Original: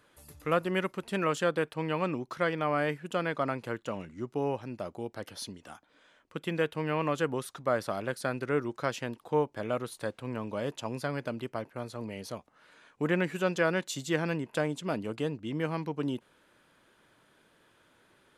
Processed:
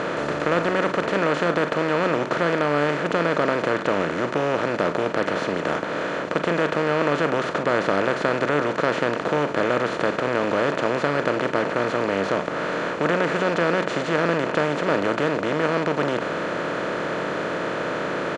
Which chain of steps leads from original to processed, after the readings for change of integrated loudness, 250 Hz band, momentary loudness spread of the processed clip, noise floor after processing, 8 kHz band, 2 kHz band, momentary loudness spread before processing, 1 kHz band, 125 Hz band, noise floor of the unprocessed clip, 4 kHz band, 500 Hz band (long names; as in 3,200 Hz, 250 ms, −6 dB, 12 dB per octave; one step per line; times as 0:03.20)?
+10.0 dB, +9.0 dB, 5 LU, −29 dBFS, +4.0 dB, +12.5 dB, 11 LU, +12.0 dB, +6.0 dB, −66 dBFS, +10.5 dB, +11.0 dB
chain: compressor on every frequency bin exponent 0.2
downsampling to 22,050 Hz
high-frequency loss of the air 130 metres
double-tracking delay 41 ms −12.5 dB